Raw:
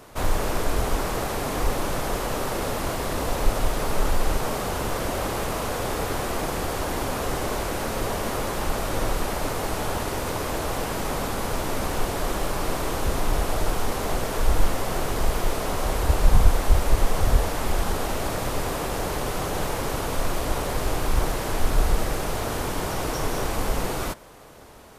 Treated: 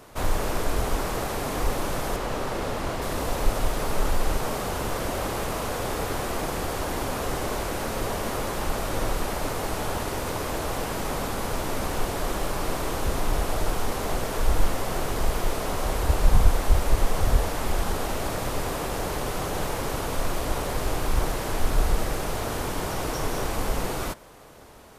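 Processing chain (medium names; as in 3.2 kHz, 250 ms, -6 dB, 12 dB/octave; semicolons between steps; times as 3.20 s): 2.16–3.02 s: treble shelf 7.7 kHz -10 dB; trim -1.5 dB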